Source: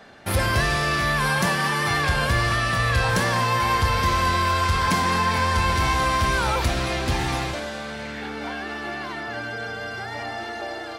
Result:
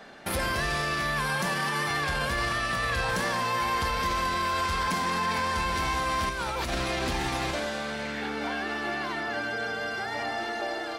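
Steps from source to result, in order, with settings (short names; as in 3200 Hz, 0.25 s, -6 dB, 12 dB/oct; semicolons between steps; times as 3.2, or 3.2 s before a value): bell 96 Hz -12 dB 0.6 oct; notches 60/120 Hz; limiter -20 dBFS, peak gain reduction 8.5 dB; 6.29–6.75 negative-ratio compressor -30 dBFS, ratio -0.5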